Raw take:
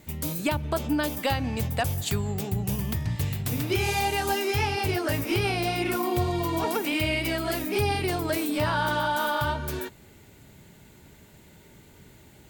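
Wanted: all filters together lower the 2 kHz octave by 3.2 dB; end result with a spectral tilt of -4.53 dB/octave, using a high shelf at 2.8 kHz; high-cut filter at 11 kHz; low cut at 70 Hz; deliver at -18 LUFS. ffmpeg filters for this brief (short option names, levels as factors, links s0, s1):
-af "highpass=70,lowpass=11000,equalizer=f=2000:t=o:g=-6.5,highshelf=f=2800:g=4.5,volume=2.99"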